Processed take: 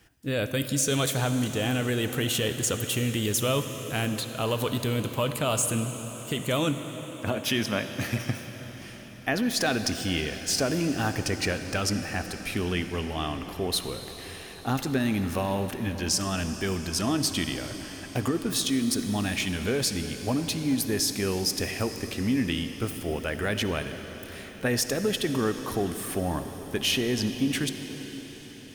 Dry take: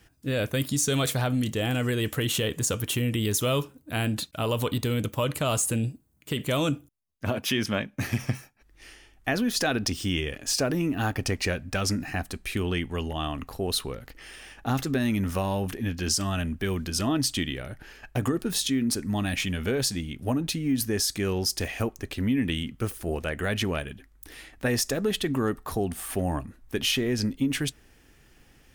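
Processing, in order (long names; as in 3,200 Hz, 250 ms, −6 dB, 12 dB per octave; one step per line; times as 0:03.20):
low-shelf EQ 97 Hz −5.5 dB
on a send: convolution reverb RT60 5.9 s, pre-delay 51 ms, DRR 8 dB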